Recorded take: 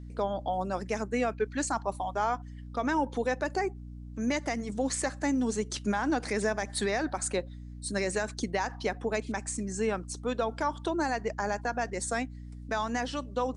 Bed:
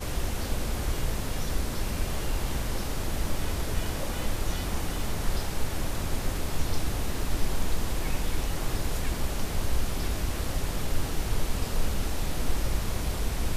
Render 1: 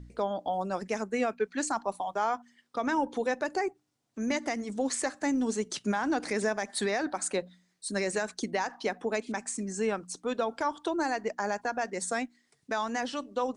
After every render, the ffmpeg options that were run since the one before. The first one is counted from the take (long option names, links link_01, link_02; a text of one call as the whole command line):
ffmpeg -i in.wav -af "bandreject=frequency=60:width_type=h:width=4,bandreject=frequency=120:width_type=h:width=4,bandreject=frequency=180:width_type=h:width=4,bandreject=frequency=240:width_type=h:width=4,bandreject=frequency=300:width_type=h:width=4" out.wav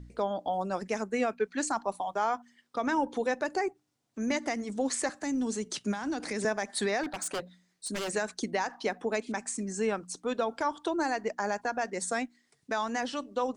ffmpeg -i in.wav -filter_complex "[0:a]asettb=1/sr,asplit=3[link_01][link_02][link_03];[link_01]atrim=end=5.094[link_04];[link_02]atrim=start=5.09:end=6.45,asetpts=PTS-STARTPTS,afade=type=in:duration=0.004:curve=qsin,afade=type=out:start_time=1.356:duration=0.004:curve=qsin,acrossover=split=250|3000[link_05][link_06][link_07];[link_06]acompressor=threshold=-33dB:ratio=6:attack=3.2:release=140:knee=2.83:detection=peak[link_08];[link_05][link_08][link_07]amix=inputs=3:normalize=0[link_09];[link_03]atrim=start=6.446[link_10];[link_04][link_09]acrossfade=duration=0.004:curve1=hsin:curve2=qsin[link_11];[link_11][link_10]acrossfade=duration=0.004:curve1=qsin:curve2=hsin,asettb=1/sr,asplit=3[link_12][link_13][link_14];[link_12]atrim=end=7.034[link_15];[link_13]atrim=start=7.03:end=8.1,asetpts=PTS-STARTPTS,afade=type=in:duration=0.004:curve=qsin,afade=type=out:start_time=1.066:duration=0.004:curve=qsin,aeval=exprs='0.0398*(abs(mod(val(0)/0.0398+3,4)-2)-1)':channel_layout=same[link_16];[link_14]atrim=start=8.096[link_17];[link_15][link_16]acrossfade=duration=0.004:curve1=hsin:curve2=qsin[link_18];[link_18][link_17]acrossfade=duration=0.004:curve1=qsin:curve2=hsin" out.wav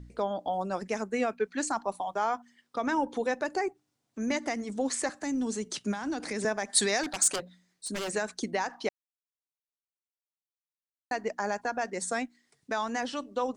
ffmpeg -i in.wav -filter_complex "[0:a]asettb=1/sr,asplit=3[link_01][link_02][link_03];[link_01]atrim=end=6.734[link_04];[link_02]atrim=start=6.73:end=7.36,asetpts=PTS-STARTPTS,afade=type=in:duration=0.004:curve=qsin,afade=type=out:start_time=0.626:duration=0.004:curve=qsin,equalizer=frequency=7400:width=0.51:gain=12.5[link_05];[link_03]atrim=start=7.356[link_06];[link_04][link_05]acrossfade=duration=0.004:curve1=hsin:curve2=qsin[link_07];[link_07][link_06]acrossfade=duration=0.004:curve1=qsin:curve2=hsin,asplit=3[link_08][link_09][link_10];[link_08]atrim=end=8.89,asetpts=PTS-STARTPTS,afade=type=out:start_time=8.886:duration=0.004:curve=hsin[link_11];[link_09]atrim=start=8.89:end=11.11,asetpts=PTS-STARTPTS,volume=0[link_12];[link_10]atrim=start=11.11,asetpts=PTS-STARTPTS,afade=type=in:duration=0.004:curve=hsin[link_13];[link_11][link_12][link_13]concat=n=3:v=0:a=1" out.wav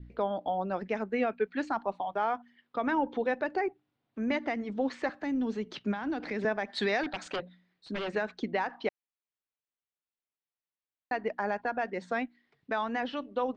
ffmpeg -i in.wav -af "lowpass=frequency=3500:width=0.5412,lowpass=frequency=3500:width=1.3066,adynamicequalizer=threshold=0.00316:dfrequency=1100:dqfactor=3.8:tfrequency=1100:tqfactor=3.8:attack=5:release=100:ratio=0.375:range=2:mode=cutabove:tftype=bell" out.wav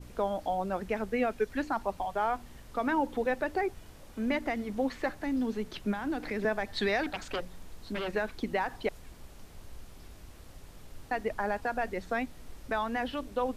ffmpeg -i in.wav -i bed.wav -filter_complex "[1:a]volume=-20.5dB[link_01];[0:a][link_01]amix=inputs=2:normalize=0" out.wav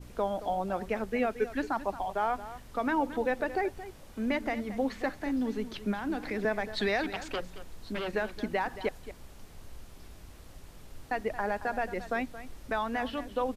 ffmpeg -i in.wav -af "aecho=1:1:224:0.2" out.wav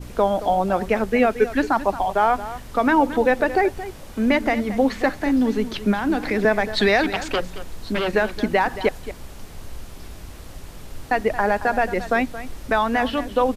ffmpeg -i in.wav -af "volume=11.5dB" out.wav